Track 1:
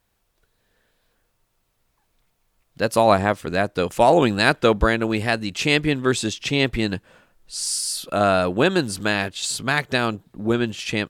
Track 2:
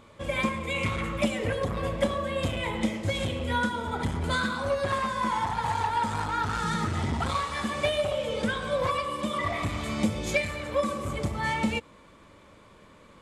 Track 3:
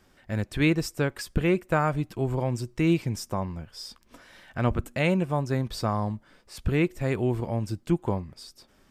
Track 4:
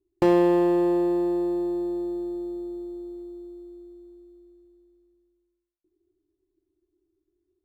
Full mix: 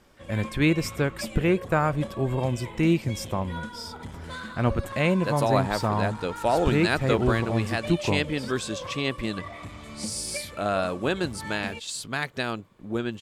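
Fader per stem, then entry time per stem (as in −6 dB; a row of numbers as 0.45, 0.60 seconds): −8.0 dB, −10.0 dB, +1.0 dB, muted; 2.45 s, 0.00 s, 0.00 s, muted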